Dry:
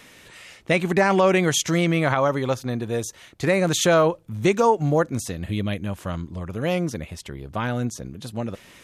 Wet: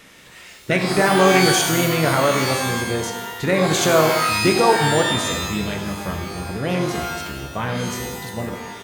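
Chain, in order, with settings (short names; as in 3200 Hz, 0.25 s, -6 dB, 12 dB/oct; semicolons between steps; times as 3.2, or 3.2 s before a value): harmoniser -5 st -10 dB; shimmer reverb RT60 1 s, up +12 st, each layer -2 dB, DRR 4 dB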